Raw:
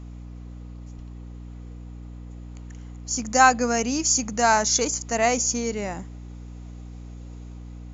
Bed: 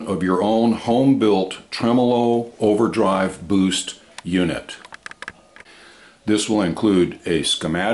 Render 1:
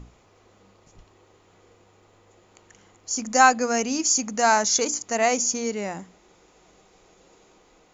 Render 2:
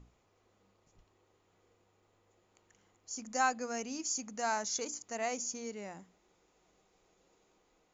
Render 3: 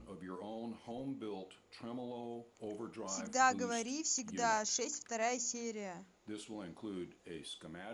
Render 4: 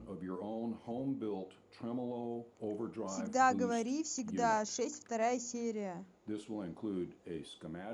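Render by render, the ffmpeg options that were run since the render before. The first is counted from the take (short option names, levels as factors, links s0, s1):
-af "bandreject=f=60:t=h:w=6,bandreject=f=120:t=h:w=6,bandreject=f=180:t=h:w=6,bandreject=f=240:t=h:w=6,bandreject=f=300:t=h:w=6"
-af "volume=0.188"
-filter_complex "[1:a]volume=0.0398[s0];[0:a][s0]amix=inputs=2:normalize=0"
-af "highpass=65,tiltshelf=f=1200:g=6"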